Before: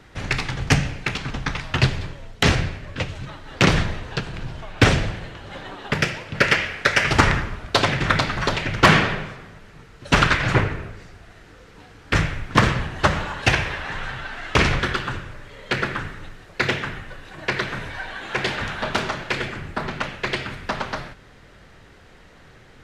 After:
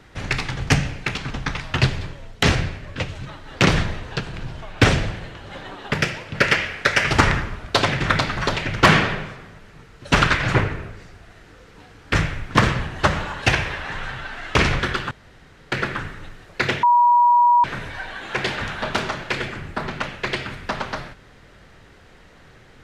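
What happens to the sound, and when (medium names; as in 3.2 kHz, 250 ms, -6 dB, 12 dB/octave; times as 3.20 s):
15.11–15.72 s: room tone
16.83–17.64 s: bleep 963 Hz -11 dBFS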